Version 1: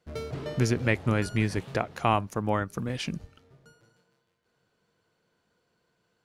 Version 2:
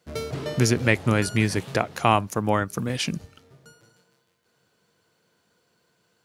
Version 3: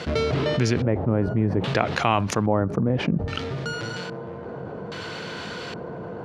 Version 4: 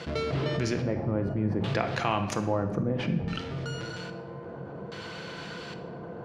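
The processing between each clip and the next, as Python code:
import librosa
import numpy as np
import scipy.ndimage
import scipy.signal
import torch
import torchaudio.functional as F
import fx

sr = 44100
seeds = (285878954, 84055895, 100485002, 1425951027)

y1 = scipy.signal.sosfilt(scipy.signal.butter(2, 78.0, 'highpass', fs=sr, output='sos'), x)
y1 = fx.high_shelf(y1, sr, hz=4500.0, db=8.0)
y1 = y1 * 10.0 ** (4.5 / 20.0)
y2 = fx.rider(y1, sr, range_db=3, speed_s=0.5)
y2 = fx.filter_lfo_lowpass(y2, sr, shape='square', hz=0.61, low_hz=720.0, high_hz=3700.0, q=1.0)
y2 = fx.env_flatten(y2, sr, amount_pct=70)
y2 = y2 * 10.0 ** (-2.0 / 20.0)
y3 = fx.room_shoebox(y2, sr, seeds[0], volume_m3=800.0, walls='mixed', distance_m=0.75)
y3 = y3 * 10.0 ** (-7.0 / 20.0)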